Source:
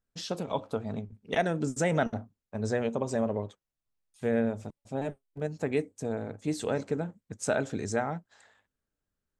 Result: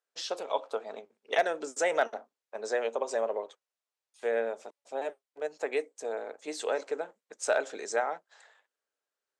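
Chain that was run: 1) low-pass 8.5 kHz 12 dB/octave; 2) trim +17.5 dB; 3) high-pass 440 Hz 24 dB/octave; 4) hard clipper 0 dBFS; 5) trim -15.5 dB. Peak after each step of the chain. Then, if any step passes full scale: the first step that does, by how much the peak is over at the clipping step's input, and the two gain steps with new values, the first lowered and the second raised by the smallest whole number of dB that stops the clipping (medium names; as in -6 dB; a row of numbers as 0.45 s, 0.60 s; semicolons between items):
-14.5 dBFS, +3.0 dBFS, +3.0 dBFS, 0.0 dBFS, -15.5 dBFS; step 2, 3.0 dB; step 2 +14.5 dB, step 5 -12.5 dB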